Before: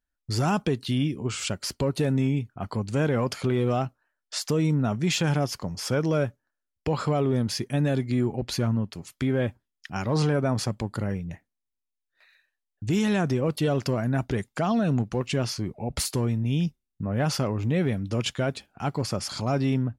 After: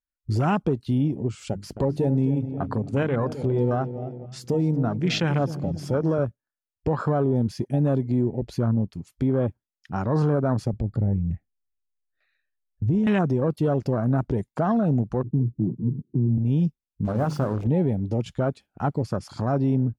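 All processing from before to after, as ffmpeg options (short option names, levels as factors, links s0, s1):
-filter_complex "[0:a]asettb=1/sr,asplit=3[s0][s1][s2];[s0]atrim=end=1.504[s3];[s1]atrim=start=1.5:end=6.19,asetpts=PTS-STARTPTS,afade=t=in:d=0.004:c=qsin,afade=t=out:st=4.686:d=0.004:c=qsin,bandreject=f=50:t=h:w=6,bandreject=f=100:t=h:w=6,bandreject=f=150:t=h:w=6,bandreject=f=200:t=h:w=6,bandreject=f=250:t=h:w=6,bandreject=f=300:t=h:w=6,asplit=2[s4][s5];[s5]adelay=262,lowpass=f=2500:p=1,volume=0.251,asplit=2[s6][s7];[s7]adelay=262,lowpass=f=2500:p=1,volume=0.49,asplit=2[s8][s9];[s9]adelay=262,lowpass=f=2500:p=1,volume=0.49,asplit=2[s10][s11];[s11]adelay=262,lowpass=f=2500:p=1,volume=0.49,asplit=2[s12][s13];[s13]adelay=262,lowpass=f=2500:p=1,volume=0.49[s14];[s4][s6][s8][s10][s12][s14]amix=inputs=6:normalize=0,atrim=end_sample=206829[s15];[s2]atrim=start=6.186[s16];[s3][s15]acrossfade=d=0.004:c1=hsin:c2=qsin[s17];[s17][s16]acrossfade=d=0.004:c1=qsin:c2=hsin,asettb=1/sr,asplit=3[s18][s19][s20];[s18]atrim=end=10.734[s21];[s19]atrim=start=10.73:end=13.07,asetpts=PTS-STARTPTS,afade=t=in:d=0.004:c=qsin,afade=t=out:st=2.336:d=0.004:c=qsin,aemphasis=mode=reproduction:type=bsi,acompressor=threshold=0.0282:ratio=2:attack=3.2:release=140:knee=1:detection=peak,asuperstop=centerf=950:order=20:qfactor=3.6[s22];[s20]atrim=start=13.066[s23];[s21][s22]acrossfade=d=0.004:c1=hsin:c2=qsin[s24];[s24][s23]acrossfade=d=0.004:c1=qsin:c2=hsin,asettb=1/sr,asplit=3[s25][s26][s27];[s25]atrim=end=15.234[s28];[s26]atrim=start=15.23:end=16.38,asetpts=PTS-STARTPTS,afade=t=in:d=0.004:c=qsin,afade=t=out:st=1.146:d=0.004:c=qsin,aeval=exprs='val(0)+0.5*0.0282*sgn(val(0))':c=same,asuperpass=centerf=200:order=12:qfactor=0.81,lowshelf=f=160:g=4[s29];[s27]atrim=start=16.376[s30];[s28][s29]acrossfade=d=0.004:c1=hsin:c2=qsin[s31];[s31][s30]acrossfade=d=0.004:c1=qsin:c2=hsin,asettb=1/sr,asplit=3[s32][s33][s34];[s32]atrim=end=17.054[s35];[s33]atrim=start=17.05:end=17.67,asetpts=PTS-STARTPTS,afade=t=in:d=0.004:c=qsin,afade=t=out:st=0.616:d=0.004:c=qsin,bandreject=f=50:t=h:w=6,bandreject=f=100:t=h:w=6,bandreject=f=150:t=h:w=6,bandreject=f=200:t=h:w=6,bandreject=f=250:t=h:w=6,bandreject=f=300:t=h:w=6,bandreject=f=350:t=h:w=6,bandreject=f=400:t=h:w=6,bandreject=f=450:t=h:w=6,bandreject=f=500:t=h:w=6,acrusher=bits=5:mix=0:aa=0.5,acompressor=mode=upward:threshold=0.0355:ratio=2.5:attack=3.2:release=140:knee=2.83:detection=peak[s36];[s34]atrim=start=17.666[s37];[s35][s36]acrossfade=d=0.004:c1=hsin:c2=qsin[s38];[s38][s37]acrossfade=d=0.004:c1=qsin:c2=hsin,afwtdn=0.0251,alimiter=limit=0.1:level=0:latency=1:release=320,volume=1.88"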